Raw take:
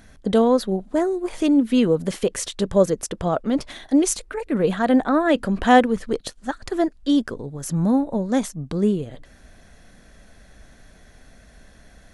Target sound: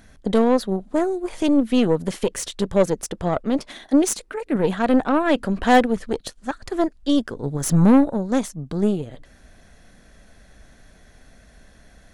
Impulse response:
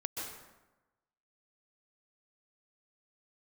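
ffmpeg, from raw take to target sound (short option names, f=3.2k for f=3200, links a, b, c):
-filter_complex "[0:a]asplit=3[a][b][c];[a]afade=t=out:st=7.42:d=0.02[d];[b]acontrast=89,afade=t=in:st=7.42:d=0.02,afade=t=out:st=8.09:d=0.02[e];[c]afade=t=in:st=8.09:d=0.02[f];[d][e][f]amix=inputs=3:normalize=0,aeval=exprs='0.841*(cos(1*acos(clip(val(0)/0.841,-1,1)))-cos(1*PI/2))+0.0531*(cos(8*acos(clip(val(0)/0.841,-1,1)))-cos(8*PI/2))':c=same,asettb=1/sr,asplit=3[g][h][i];[g]atrim=end=3.594[j];[h]atrim=start=3.59:end=4.56,asetpts=PTS-STARTPTS,afade=t=in:d=0.004:c=qsin,afade=t=out:st=0.966:d=0.004:c=qsin,lowshelf=f=140:t=q:w=1.5:g=-7.5[k];[i]atrim=start=4.556[l];[j][k]acrossfade=d=0.004:c1=hsin:c2=qsin[m];[m][l]acrossfade=d=0.004:c1=qsin:c2=hsin,volume=-1dB"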